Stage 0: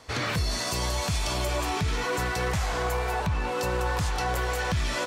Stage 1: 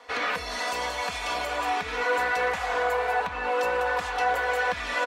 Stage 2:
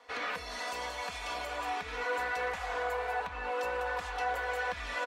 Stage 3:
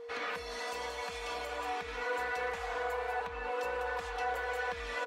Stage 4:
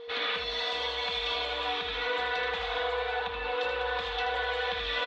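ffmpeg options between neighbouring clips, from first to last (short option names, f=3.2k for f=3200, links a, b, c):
-filter_complex "[0:a]acrossover=split=390 3200:gain=0.0891 1 0.224[a][b][c];[a][b][c]amix=inputs=3:normalize=0,aecho=1:1:4.1:0.69,volume=2.5dB"
-af "asubboost=boost=3:cutoff=76,volume=-8dB"
-af "aeval=exprs='val(0)+0.00891*sin(2*PI*470*n/s)':c=same,volume=-2dB"
-filter_complex "[0:a]lowpass=f=3.6k:t=q:w=6.4,asplit=2[a][b];[b]aecho=0:1:79:0.473[c];[a][c]amix=inputs=2:normalize=0,volume=2dB"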